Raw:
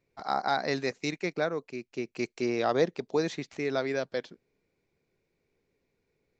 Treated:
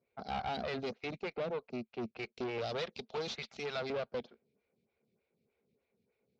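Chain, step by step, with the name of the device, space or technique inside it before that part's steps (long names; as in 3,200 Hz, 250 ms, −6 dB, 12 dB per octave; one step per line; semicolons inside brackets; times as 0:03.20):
0:02.58–0:03.90: spectral tilt +4.5 dB per octave
vibe pedal into a guitar amplifier (phaser with staggered stages 3.3 Hz; tube saturation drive 37 dB, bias 0.75; loudspeaker in its box 80–4,300 Hz, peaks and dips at 220 Hz +8 dB, 310 Hz −10 dB, 1,000 Hz −5 dB, 1,800 Hz −8 dB)
level +5.5 dB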